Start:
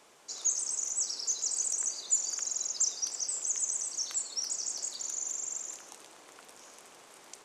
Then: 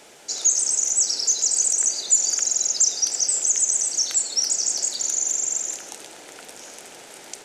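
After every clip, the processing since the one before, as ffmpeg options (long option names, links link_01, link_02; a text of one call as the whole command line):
ffmpeg -i in.wav -filter_complex "[0:a]equalizer=frequency=1100:width_type=o:width=0.27:gain=-13.5,asplit=2[link_01][link_02];[link_02]alimiter=level_in=0.5dB:limit=-24dB:level=0:latency=1:release=95,volume=-0.5dB,volume=0dB[link_03];[link_01][link_03]amix=inputs=2:normalize=0,volume=6.5dB" out.wav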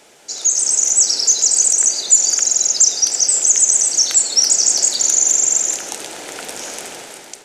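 ffmpeg -i in.wav -af "dynaudnorm=framelen=220:gausssize=5:maxgain=12.5dB" out.wav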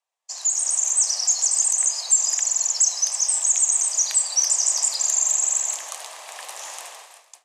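ffmpeg -i in.wav -af "afreqshift=310,agate=range=-33dB:threshold=-29dB:ratio=3:detection=peak,volume=-6.5dB" out.wav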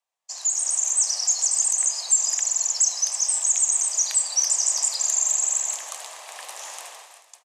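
ffmpeg -i in.wav -af "aecho=1:1:437:0.0841,volume=-1.5dB" out.wav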